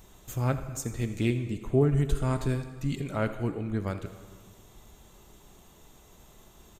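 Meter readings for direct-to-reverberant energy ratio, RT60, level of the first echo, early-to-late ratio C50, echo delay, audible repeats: 9.0 dB, 1.8 s, −17.5 dB, 10.0 dB, 82 ms, 1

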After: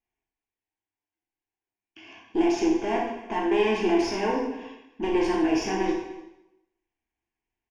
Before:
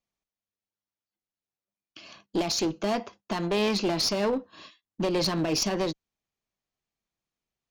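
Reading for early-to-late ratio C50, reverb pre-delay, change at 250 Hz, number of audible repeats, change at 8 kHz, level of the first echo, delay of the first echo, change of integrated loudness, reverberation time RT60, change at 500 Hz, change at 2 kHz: 2.5 dB, 5 ms, +4.5 dB, 1, −8.0 dB, −19.0 dB, 297 ms, +2.0 dB, 0.95 s, +3.0 dB, +3.5 dB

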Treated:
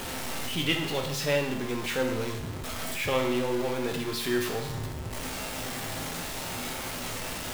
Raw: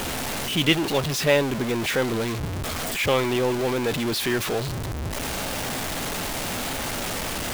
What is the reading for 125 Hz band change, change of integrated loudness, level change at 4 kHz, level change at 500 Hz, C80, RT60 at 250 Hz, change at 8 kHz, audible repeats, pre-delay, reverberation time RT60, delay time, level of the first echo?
−6.0 dB, −5.5 dB, −6.0 dB, −5.5 dB, 9.0 dB, 0.85 s, −6.0 dB, no echo audible, 8 ms, 0.80 s, no echo audible, no echo audible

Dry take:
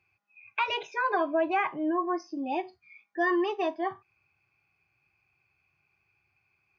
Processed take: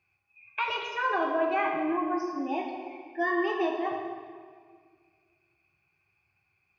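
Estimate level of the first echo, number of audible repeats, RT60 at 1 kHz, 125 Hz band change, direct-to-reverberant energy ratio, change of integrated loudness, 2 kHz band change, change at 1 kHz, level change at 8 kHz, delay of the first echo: no echo audible, no echo audible, 1.8 s, can't be measured, 1.0 dB, −0.5 dB, +0.5 dB, 0.0 dB, can't be measured, no echo audible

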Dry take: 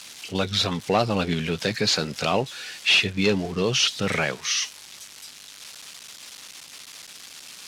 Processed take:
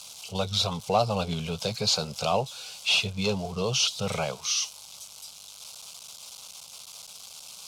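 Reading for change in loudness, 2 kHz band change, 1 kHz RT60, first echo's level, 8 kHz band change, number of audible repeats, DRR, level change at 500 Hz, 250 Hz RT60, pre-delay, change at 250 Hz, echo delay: −4.0 dB, −8.5 dB, no reverb audible, no echo audible, −1.0 dB, no echo audible, no reverb audible, −3.5 dB, no reverb audible, no reverb audible, −7.0 dB, no echo audible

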